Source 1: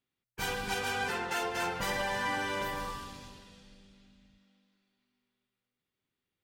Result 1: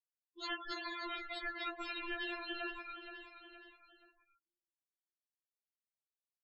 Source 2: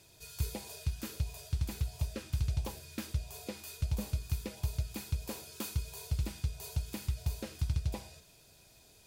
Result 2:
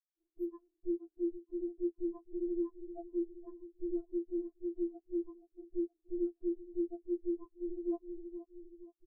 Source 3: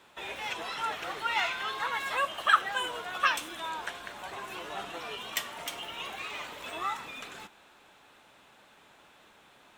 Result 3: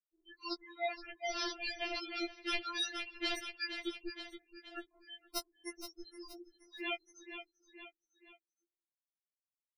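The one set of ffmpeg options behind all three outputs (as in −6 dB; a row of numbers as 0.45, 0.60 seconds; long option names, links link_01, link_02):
-af "highshelf=frequency=3300:gain=6.5,aresample=32000,aresample=44100,aeval=exprs='abs(val(0))':channel_layout=same,afftfilt=real='re*gte(hypot(re,im),0.0316)':imag='im*gte(hypot(re,im),0.0316)':win_size=1024:overlap=0.75,aecho=1:1:472|944|1416:0.126|0.0504|0.0201,areverse,acompressor=threshold=-42dB:ratio=6,areverse,aeval=exprs='val(0)*sin(2*PI*230*n/s)':channel_layout=same,superequalizer=9b=0.501:15b=0.282,afftfilt=real='re*4*eq(mod(b,16),0)':imag='im*4*eq(mod(b,16),0)':win_size=2048:overlap=0.75,volume=18dB"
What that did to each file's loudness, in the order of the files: −8.5, −1.5, −8.0 LU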